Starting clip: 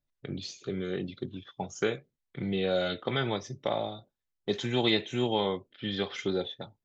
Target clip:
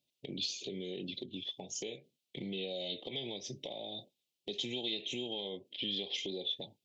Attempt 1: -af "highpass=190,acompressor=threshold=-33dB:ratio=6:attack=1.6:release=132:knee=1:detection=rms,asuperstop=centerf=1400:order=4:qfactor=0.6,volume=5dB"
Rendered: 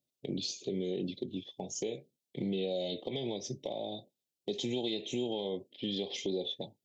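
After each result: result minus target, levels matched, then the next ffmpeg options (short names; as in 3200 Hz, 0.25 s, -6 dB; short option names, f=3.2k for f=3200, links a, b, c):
compressor: peak gain reduction -7 dB; 4000 Hz band -5.0 dB
-af "highpass=190,acompressor=threshold=-41.5dB:ratio=6:attack=1.6:release=132:knee=1:detection=rms,asuperstop=centerf=1400:order=4:qfactor=0.6,volume=5dB"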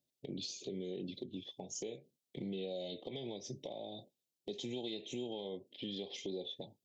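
4000 Hz band -4.5 dB
-af "highpass=190,acompressor=threshold=-41.5dB:ratio=6:attack=1.6:release=132:knee=1:detection=rms,asuperstop=centerf=1400:order=4:qfactor=0.6,equalizer=f=2.9k:t=o:w=1.4:g=11,volume=5dB"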